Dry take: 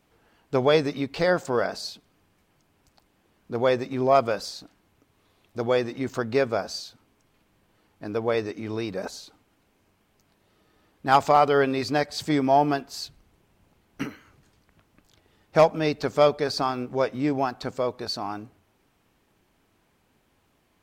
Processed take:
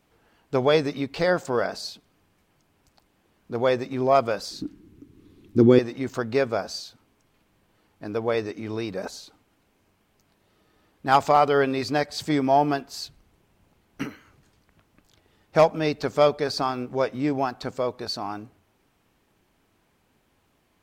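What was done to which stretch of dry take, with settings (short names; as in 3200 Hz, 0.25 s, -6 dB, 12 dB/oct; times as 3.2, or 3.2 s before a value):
4.51–5.79 resonant low shelf 450 Hz +12 dB, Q 3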